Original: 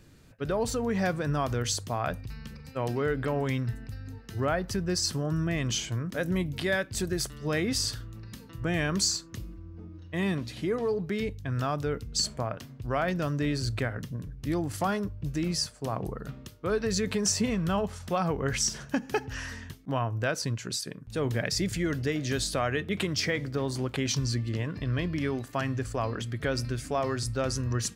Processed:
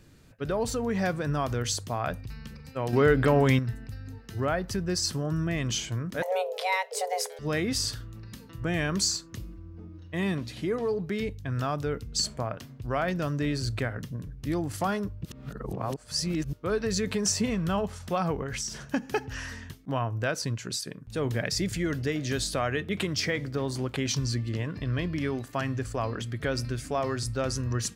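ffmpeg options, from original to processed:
-filter_complex "[0:a]asettb=1/sr,asplit=3[s0][s1][s2];[s0]atrim=end=6.224[s3];[s1]atrim=start=6.22:end=7.39,asetpts=PTS-STARTPTS,afade=t=in:d=0.004:c=qsin,afade=t=out:st=1.166:d=0.004:c=qsin,afreqshift=370[s4];[s2]atrim=start=7.386[s5];[s3][s4]acrossfade=d=0.004:c1=hsin:c2=qsin[s6];[s6][s5]acrossfade=d=0.004:c1=qsin:c2=hsin,asettb=1/sr,asplit=3[s7][s8][s9];[s7]atrim=end=18.424[s10];[s8]atrim=start=18.42:end=18.87,asetpts=PTS-STARTPTS,afade=t=in:d=0.004:c=qsin,afade=t=out:st=0.446:d=0.004:c=qsin,acompressor=threshold=0.0316:ratio=5:attack=3.2:release=140:knee=1:detection=peak[s11];[s9]atrim=start=18.866[s12];[s10][s11]acrossfade=d=0.004:c1=hsin:c2=qsin[s13];[s13][s12]acrossfade=d=0.004:c1=qsin:c2=hsin,asplit=5[s14][s15][s16][s17][s18];[s14]atrim=end=2.932[s19];[s15]atrim=start=2.928:end=3.592,asetpts=PTS-STARTPTS,volume=2.37[s20];[s16]atrim=start=3.588:end=15.252[s21];[s17]atrim=start=15.248:end=16.532,asetpts=PTS-STARTPTS,areverse[s22];[s18]atrim=start=16.528[s23];[s19][s20]acrossfade=d=0.004:c1=hsin:c2=hsin[s24];[s24][s21]acrossfade=d=0.004:c1=hsin:c2=hsin[s25];[s25][s22]acrossfade=d=0.004:c1=hsin:c2=hsin[s26];[s26][s23]acrossfade=d=0.004:c1=hsin:c2=hsin"

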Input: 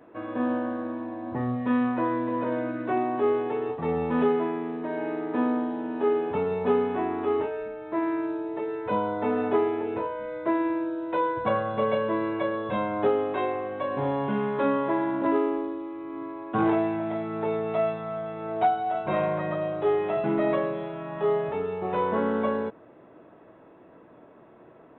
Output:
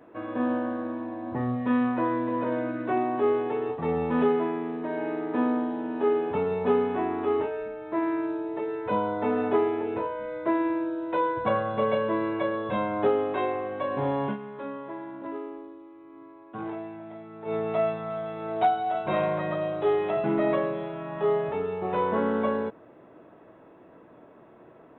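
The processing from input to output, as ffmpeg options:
-filter_complex "[0:a]asettb=1/sr,asplit=3[s0][s1][s2];[s0]atrim=end=18.104[s3];[s1]atrim=start=18.1:end=20.11,asetpts=PTS-STARTPTS,afade=t=in:d=0.004:c=qsin,afade=t=out:st=2.006:d=0.004:c=qsin,bass=f=250:g=-1,treble=f=4000:g=10[s4];[s2]atrim=start=20.106[s5];[s3][s4]acrossfade=d=0.004:c1=hsin:c2=qsin[s6];[s6][s5]acrossfade=d=0.004:c1=qsin:c2=hsin,asplit=3[s7][s8][s9];[s7]atrim=end=14.37,asetpts=PTS-STARTPTS,afade=t=out:st=14.25:d=0.12:c=qsin:silence=0.251189[s10];[s8]atrim=start=14.37:end=17.45,asetpts=PTS-STARTPTS,volume=0.251[s11];[s9]atrim=start=17.45,asetpts=PTS-STARTPTS,afade=t=in:d=0.12:c=qsin:silence=0.251189[s12];[s10][s11][s12]concat=n=3:v=0:a=1"

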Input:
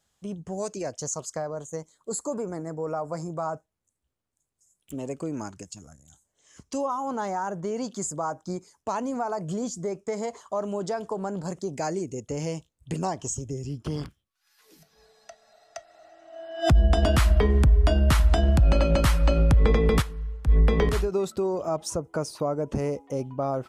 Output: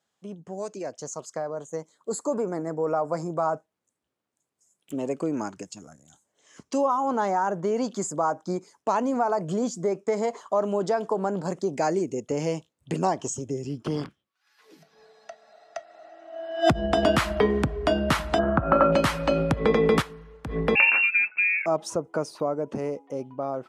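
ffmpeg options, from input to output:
-filter_complex "[0:a]asettb=1/sr,asplit=3[s0][s1][s2];[s0]atrim=end=14.044[s3];[s1]atrim=start=14.04:end=16.44,asetpts=PTS-STARTPTS,afade=t=in:d=0.004:c=qsin,afade=t=out:st=2.396:d=0.004:c=qsin,highshelf=f=6600:g=-8[s4];[s2]atrim=start=16.436[s5];[s3][s4]acrossfade=d=0.004:c1=hsin:c2=qsin[s6];[s6][s5]acrossfade=d=0.004:c1=qsin:c2=hsin,asplit=3[s7][s8][s9];[s7]afade=t=out:st=18.38:d=0.02[s10];[s8]lowpass=f=1300:t=q:w=4.9,afade=t=in:st=18.38:d=0.02,afade=t=out:st=18.91:d=0.02[s11];[s9]afade=t=in:st=18.91:d=0.02[s12];[s10][s11][s12]amix=inputs=3:normalize=0,asettb=1/sr,asplit=3[s13][s14][s15];[s13]atrim=end=20.754[s16];[s14]atrim=start=20.75:end=21.66,asetpts=PTS-STARTPTS,afade=t=in:d=0.004:c=qsin,afade=t=out:st=0.906:d=0.004:c=qsin,lowpass=f=2400:t=q:w=0.5098,lowpass=f=2400:t=q:w=0.6013,lowpass=f=2400:t=q:w=0.9,lowpass=f=2400:t=q:w=2.563,afreqshift=-2800[s17];[s15]atrim=start=21.656[s18];[s16][s17]acrossfade=d=0.004:c1=hsin:c2=qsin[s19];[s19][s18]acrossfade=d=0.004:c1=qsin:c2=hsin,highpass=200,aemphasis=mode=reproduction:type=cd,dynaudnorm=f=170:g=21:m=2.24,volume=0.794"

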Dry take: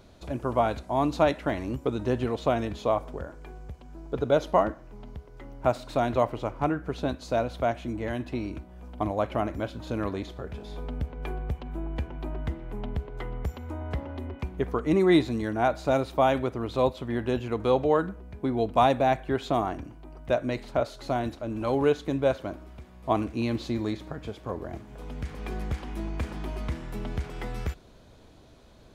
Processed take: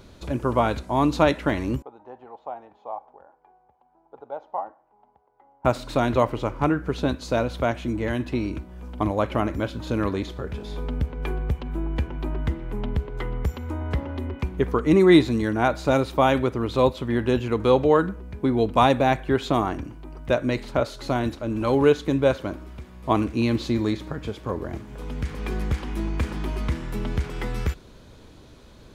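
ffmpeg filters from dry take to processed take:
-filter_complex "[0:a]asettb=1/sr,asplit=3[s0][s1][s2];[s0]atrim=end=1.824[s3];[s1]atrim=start=1.82:end=5.65,asetpts=PTS-STARTPTS,afade=t=in:d=0.004:c=qsin,afade=t=out:st=3.826:d=0.004:c=qsin,bandpass=f=800:t=q:w=8.8[s4];[s2]atrim=start=5.646[s5];[s3][s4]acrossfade=d=0.004:c1=hsin:c2=qsin[s6];[s6][s5]acrossfade=d=0.004:c1=qsin:c2=hsin,equalizer=f=690:w=3.8:g=-7,volume=2"

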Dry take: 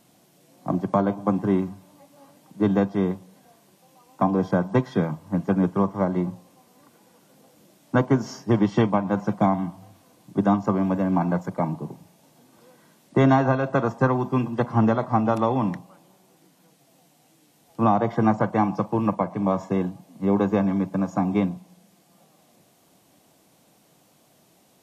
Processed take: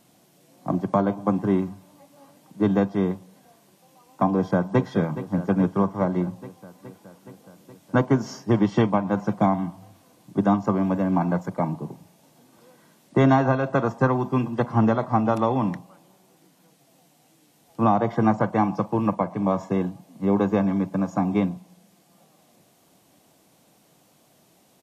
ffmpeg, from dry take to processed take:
-filter_complex "[0:a]asplit=2[s0][s1];[s1]afade=t=in:st=4.31:d=0.01,afade=t=out:st=4.82:d=0.01,aecho=0:1:420|840|1260|1680|2100|2520|2940|3360|3780|4200|4620:0.223872|0.167904|0.125928|0.094446|0.0708345|0.0531259|0.0398444|0.0298833|0.0224125|0.0168094|0.012607[s2];[s0][s2]amix=inputs=2:normalize=0"

